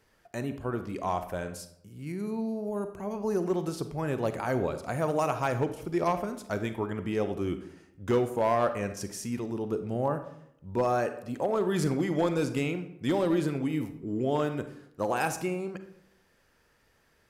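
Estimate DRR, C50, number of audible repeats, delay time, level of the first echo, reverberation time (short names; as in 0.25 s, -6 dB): 9.5 dB, 10.5 dB, none, none, none, 0.75 s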